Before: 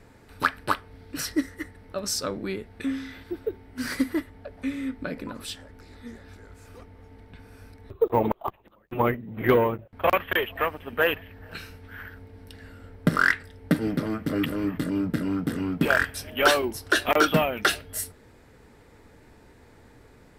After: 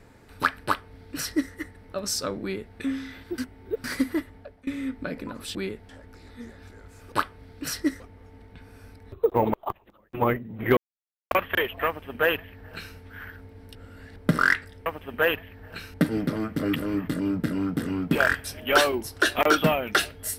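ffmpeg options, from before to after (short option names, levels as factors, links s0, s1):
-filter_complex "[0:a]asplit=14[s0][s1][s2][s3][s4][s5][s6][s7][s8][s9][s10][s11][s12][s13];[s0]atrim=end=3.382[s14];[s1]atrim=start=3.378:end=3.842,asetpts=PTS-STARTPTS,areverse[s15];[s2]atrim=start=3.838:end=4.67,asetpts=PTS-STARTPTS,afade=t=out:st=0.512:d=0.32:silence=0.0794328[s16];[s3]atrim=start=4.67:end=5.552,asetpts=PTS-STARTPTS,afade=t=in:d=0.004:c=hsin:silence=0.0794328[s17];[s4]atrim=start=2.418:end=2.762[s18];[s5]atrim=start=5.548:end=6.782[s19];[s6]atrim=start=0.638:end=1.522[s20];[s7]atrim=start=6.778:end=9.55,asetpts=PTS-STARTPTS,afade=t=out:st=2.768:d=0.004:c=hsin[s21];[s8]atrim=start=9.55:end=10.09,asetpts=PTS-STARTPTS,volume=0[s22];[s9]atrim=start=10.09:end=12.532,asetpts=PTS-STARTPTS,afade=t=in:d=0.004:c=hsin[s23];[s10]atrim=start=12.528:end=12.942,asetpts=PTS-STARTPTS,areverse[s24];[s11]atrim=start=12.938:end=13.642[s25];[s12]atrim=start=10.648:end=11.732[s26];[s13]atrim=start=13.638[s27];[s14][s15]acrossfade=d=0.004:c1=hsin:c2=hsin[s28];[s16][s17]concat=n=2:v=0:a=1[s29];[s28][s29]acrossfade=d=0.004:c1=hsin:c2=hsin[s30];[s30][s18]acrossfade=d=0.004:c1=hsin:c2=hsin[s31];[s31][s19]acrossfade=d=0.004:c1=hsin:c2=hsin[s32];[s32][s20]acrossfade=d=0.004:c1=hsin:c2=hsin[s33];[s21][s22][s23]concat=n=3:v=0:a=1[s34];[s33][s34]acrossfade=d=0.004:c1=hsin:c2=hsin[s35];[s35][s24]acrossfade=d=0.004:c1=hsin:c2=hsin[s36];[s36][s25]acrossfade=d=0.004:c1=hsin:c2=hsin[s37];[s37][s26]acrossfade=d=0.004:c1=hsin:c2=hsin[s38];[s38][s27]acrossfade=d=0.004:c1=hsin:c2=hsin"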